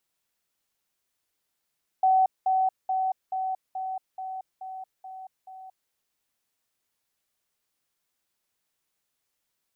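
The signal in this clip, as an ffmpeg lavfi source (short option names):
-f lavfi -i "aevalsrc='pow(10,(-17-3*floor(t/0.43))/20)*sin(2*PI*756*t)*clip(min(mod(t,0.43),0.23-mod(t,0.43))/0.005,0,1)':d=3.87:s=44100"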